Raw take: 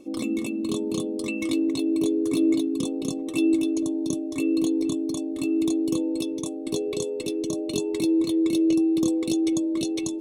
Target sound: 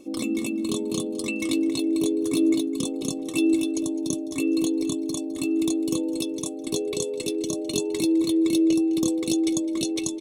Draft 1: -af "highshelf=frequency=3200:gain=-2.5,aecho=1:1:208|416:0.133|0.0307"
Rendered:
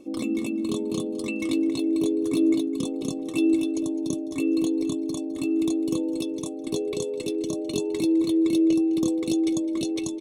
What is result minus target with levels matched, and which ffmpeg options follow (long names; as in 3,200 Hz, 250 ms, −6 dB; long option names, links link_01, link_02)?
8,000 Hz band −6.5 dB
-af "highshelf=frequency=3200:gain=5.5,aecho=1:1:208|416:0.133|0.0307"